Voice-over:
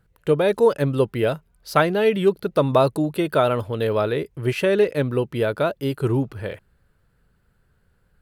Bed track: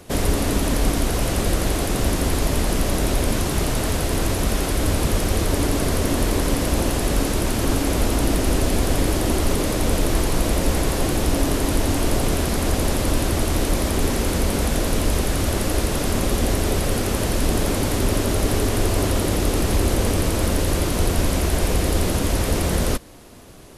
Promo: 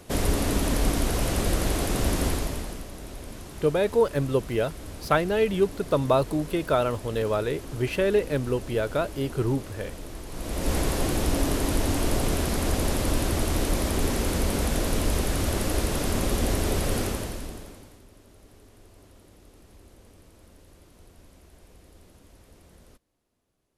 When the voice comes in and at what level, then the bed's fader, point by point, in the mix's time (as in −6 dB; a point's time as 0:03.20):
3.35 s, −4.5 dB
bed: 0:02.27 −4 dB
0:02.89 −19 dB
0:10.25 −19 dB
0:10.73 −4.5 dB
0:17.03 −4.5 dB
0:18.06 −33 dB